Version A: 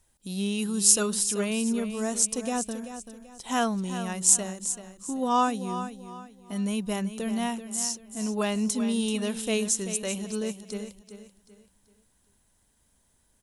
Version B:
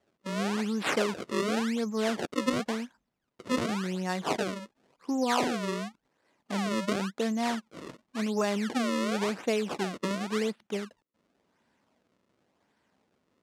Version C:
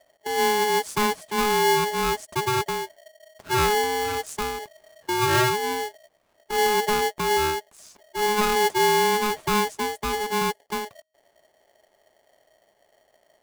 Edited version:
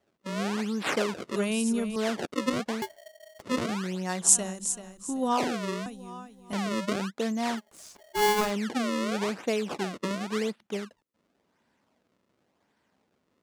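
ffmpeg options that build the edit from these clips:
-filter_complex "[0:a]asplit=3[a][b][c];[2:a]asplit=2[d][e];[1:a]asplit=6[f][g][h][i][j][k];[f]atrim=end=1.362[l];[a]atrim=start=1.358:end=1.962[m];[g]atrim=start=1.958:end=2.822[n];[d]atrim=start=2.818:end=3.422[o];[h]atrim=start=3.418:end=4.3[p];[b]atrim=start=4.2:end=5.41[q];[i]atrim=start=5.31:end=5.862[r];[c]atrim=start=5.858:end=6.532[s];[j]atrim=start=6.528:end=7.8[t];[e]atrim=start=7.56:end=8.53[u];[k]atrim=start=8.29[v];[l][m]acrossfade=d=0.004:c1=hsin:c2=hsin[w];[w][n]acrossfade=d=0.004:c1=hsin:c2=hsin[x];[x][o]acrossfade=d=0.004:c1=hsin:c2=hsin[y];[y][p]acrossfade=d=0.004:c1=hsin:c2=hsin[z];[z][q]acrossfade=d=0.1:c1=tri:c2=tri[aa];[aa][r]acrossfade=d=0.1:c1=tri:c2=tri[ab];[ab][s]acrossfade=d=0.004:c1=hsin:c2=hsin[ac];[ac][t]acrossfade=d=0.004:c1=hsin:c2=hsin[ad];[ad][u]acrossfade=d=0.24:c1=tri:c2=tri[ae];[ae][v]acrossfade=d=0.24:c1=tri:c2=tri"

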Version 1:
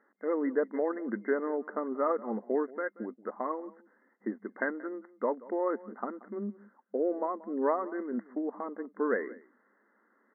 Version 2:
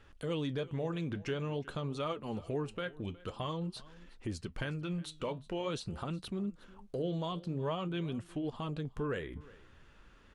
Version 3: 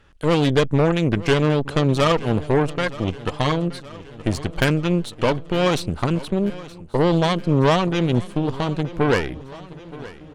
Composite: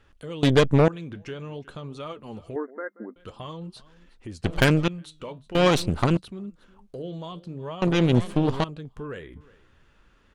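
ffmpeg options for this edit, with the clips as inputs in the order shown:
-filter_complex "[2:a]asplit=4[a][b][c][d];[1:a]asplit=6[e][f][g][h][i][j];[e]atrim=end=0.432[k];[a]atrim=start=0.428:end=0.882[l];[f]atrim=start=0.878:end=2.562[m];[0:a]atrim=start=2.558:end=3.162[n];[g]atrim=start=3.158:end=4.442[o];[b]atrim=start=4.438:end=4.882[p];[h]atrim=start=4.878:end=5.552[q];[c]atrim=start=5.548:end=6.172[r];[i]atrim=start=6.168:end=7.822[s];[d]atrim=start=7.818:end=8.642[t];[j]atrim=start=8.638[u];[k][l]acrossfade=d=0.004:c1=hsin:c2=hsin[v];[v][m]acrossfade=d=0.004:c1=hsin:c2=hsin[w];[w][n]acrossfade=d=0.004:c1=hsin:c2=hsin[x];[x][o]acrossfade=d=0.004:c1=hsin:c2=hsin[y];[y][p]acrossfade=d=0.004:c1=hsin:c2=hsin[z];[z][q]acrossfade=d=0.004:c1=hsin:c2=hsin[aa];[aa][r]acrossfade=d=0.004:c1=hsin:c2=hsin[ab];[ab][s]acrossfade=d=0.004:c1=hsin:c2=hsin[ac];[ac][t]acrossfade=d=0.004:c1=hsin:c2=hsin[ad];[ad][u]acrossfade=d=0.004:c1=hsin:c2=hsin"

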